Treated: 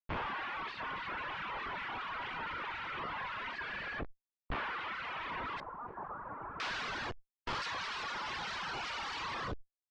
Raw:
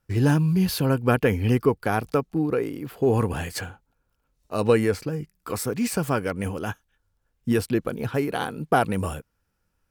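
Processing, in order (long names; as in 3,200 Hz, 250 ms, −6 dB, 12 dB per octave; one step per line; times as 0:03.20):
each half-wave held at its own peak
amplitude modulation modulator 68 Hz, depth 70%
reverb whose tail is shaped and stops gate 430 ms flat, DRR 4 dB
downward compressor, threshold −22 dBFS, peak gain reduction 9.5 dB
Butterworth high-pass 880 Hz 72 dB per octave
brickwall limiter −23.5 dBFS, peak gain reduction 9.5 dB
comparator with hysteresis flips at −45.5 dBFS
low-pass filter 2,900 Hz 24 dB per octave, from 0:05.60 1,200 Hz, from 0:06.60 5,000 Hz
reverb reduction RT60 1.9 s
level that may fall only so fast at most 84 dB per second
level +3.5 dB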